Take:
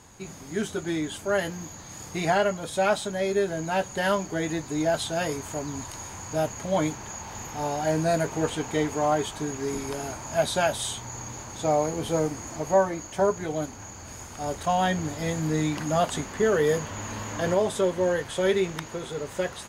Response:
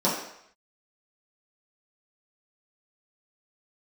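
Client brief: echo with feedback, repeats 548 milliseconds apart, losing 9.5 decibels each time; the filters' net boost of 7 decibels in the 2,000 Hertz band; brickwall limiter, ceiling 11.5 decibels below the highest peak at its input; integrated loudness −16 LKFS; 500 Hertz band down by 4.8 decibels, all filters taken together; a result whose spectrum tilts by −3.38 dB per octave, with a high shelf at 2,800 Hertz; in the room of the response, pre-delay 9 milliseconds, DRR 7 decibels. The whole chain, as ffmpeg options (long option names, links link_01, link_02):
-filter_complex "[0:a]equalizer=frequency=500:width_type=o:gain=-7,equalizer=frequency=2000:width_type=o:gain=7,highshelf=frequency=2800:gain=6.5,alimiter=limit=-20dB:level=0:latency=1,aecho=1:1:548|1096|1644|2192:0.335|0.111|0.0365|0.012,asplit=2[link_01][link_02];[1:a]atrim=start_sample=2205,adelay=9[link_03];[link_02][link_03]afir=irnorm=-1:irlink=0,volume=-21dB[link_04];[link_01][link_04]amix=inputs=2:normalize=0,volume=12.5dB"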